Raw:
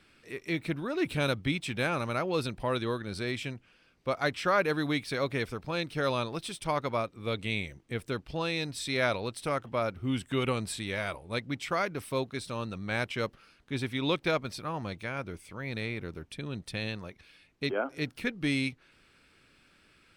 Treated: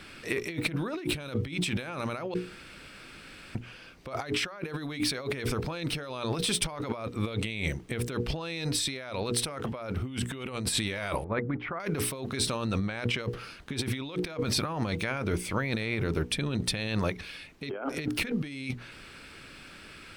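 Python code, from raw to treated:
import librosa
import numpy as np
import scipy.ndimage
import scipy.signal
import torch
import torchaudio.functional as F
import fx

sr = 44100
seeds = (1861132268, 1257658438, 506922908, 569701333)

y = fx.ladder_lowpass(x, sr, hz=1900.0, resonance_pct=25, at=(11.24, 11.8))
y = fx.high_shelf(y, sr, hz=9000.0, db=-8.5, at=(12.79, 13.23))
y = fx.edit(y, sr, fx.room_tone_fill(start_s=2.34, length_s=1.21), tone=tone)
y = fx.hum_notches(y, sr, base_hz=60, count=8)
y = fx.over_compress(y, sr, threshold_db=-41.0, ratio=-1.0)
y = y * 10.0 ** (8.0 / 20.0)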